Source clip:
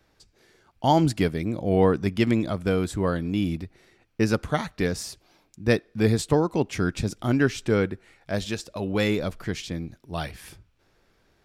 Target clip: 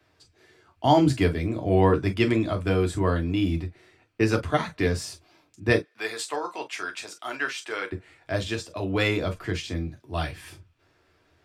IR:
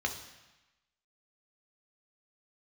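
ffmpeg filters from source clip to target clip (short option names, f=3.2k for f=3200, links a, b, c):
-filter_complex "[0:a]asettb=1/sr,asplit=3[a][b][c];[a]atrim=end=5.824[d];[b]atrim=start=5.82:end=7.92,asetpts=PTS-STARTPTS,afade=t=in:d=0.004:c=qsin,afade=t=out:st=2.096:d=0.004:c=qsin,highpass=860[e];[c]atrim=start=7.916[f];[d][e]acrossfade=d=0.004:c1=hsin:c2=qsin[g];[g][f]acrossfade=d=0.004:c1=qsin:c2=hsin[h];[1:a]atrim=start_sample=2205,atrim=end_sample=3087,asetrate=57330,aresample=44100[i];[h][i]afir=irnorm=-1:irlink=0,volume=-1dB"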